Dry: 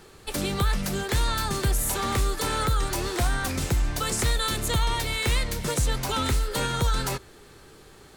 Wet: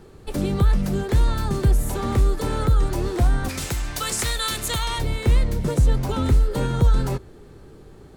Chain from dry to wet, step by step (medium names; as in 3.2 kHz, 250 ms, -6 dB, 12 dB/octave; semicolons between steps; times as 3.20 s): tilt shelf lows +7.5 dB, about 810 Hz, from 3.48 s lows -3 dB, from 4.98 s lows +8.5 dB